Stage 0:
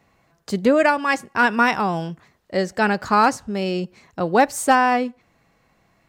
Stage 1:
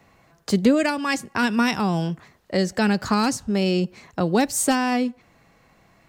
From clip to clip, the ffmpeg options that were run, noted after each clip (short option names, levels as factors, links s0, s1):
-filter_complex "[0:a]acrossover=split=310|3000[s0][s1][s2];[s1]acompressor=threshold=0.0316:ratio=4[s3];[s0][s3][s2]amix=inputs=3:normalize=0,volume=1.68"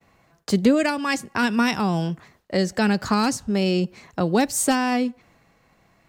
-af "agate=range=0.0224:threshold=0.00224:ratio=3:detection=peak"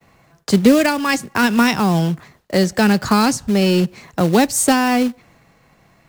-filter_complex "[0:a]equalizer=f=140:w=3.1:g=4,acrossover=split=220|2500[s0][s1][s2];[s1]acrusher=bits=3:mode=log:mix=0:aa=0.000001[s3];[s0][s3][s2]amix=inputs=3:normalize=0,volume=1.88"